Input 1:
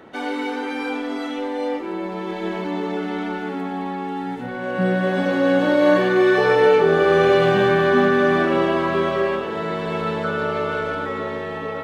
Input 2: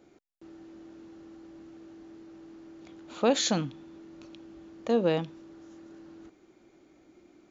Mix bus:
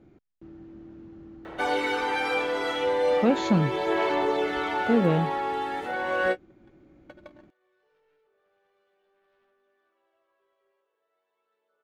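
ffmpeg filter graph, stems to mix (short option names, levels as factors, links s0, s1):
-filter_complex "[0:a]aphaser=in_gain=1:out_gain=1:delay=2.1:decay=0.32:speed=0.38:type=sinusoidal,highpass=f=400:w=0.5412,highpass=f=400:w=1.3066,aeval=exprs='0.708*sin(PI/2*2.51*val(0)/0.708)':c=same,adelay=1450,volume=0.316[s0];[1:a]bass=f=250:g=14,treble=f=4000:g=-15,volume=0.841,asplit=2[s1][s2];[s2]apad=whole_len=586049[s3];[s0][s3]sidechaingate=range=0.00224:threshold=0.00398:ratio=16:detection=peak[s4];[s4][s1]amix=inputs=2:normalize=0"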